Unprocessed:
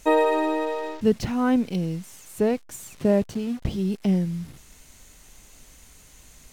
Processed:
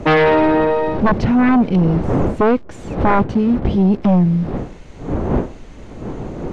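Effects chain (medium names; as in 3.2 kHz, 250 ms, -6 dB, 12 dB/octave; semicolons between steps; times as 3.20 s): wind noise 410 Hz -37 dBFS; tape spacing loss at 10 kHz 31 dB; sine folder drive 11 dB, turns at -9 dBFS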